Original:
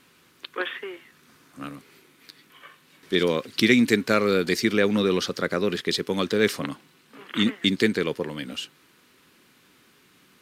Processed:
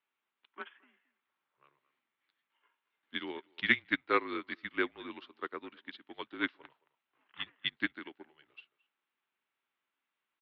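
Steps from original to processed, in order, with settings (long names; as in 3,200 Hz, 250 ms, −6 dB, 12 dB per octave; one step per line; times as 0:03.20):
far-end echo of a speakerphone 220 ms, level −15 dB
single-sideband voice off tune −140 Hz 510–3,600 Hz
expander for the loud parts 2.5 to 1, over −36 dBFS
level −1.5 dB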